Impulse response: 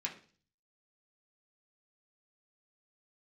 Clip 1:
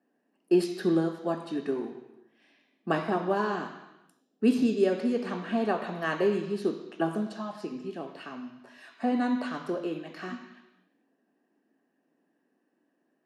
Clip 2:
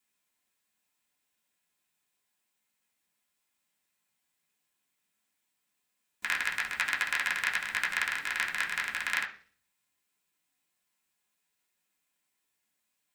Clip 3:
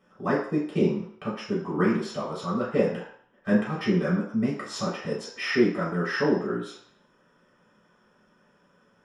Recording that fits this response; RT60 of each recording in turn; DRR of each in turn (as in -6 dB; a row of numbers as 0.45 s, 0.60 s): 2; 0.95 s, 0.40 s, 0.60 s; 4.5 dB, -3.0 dB, -7.5 dB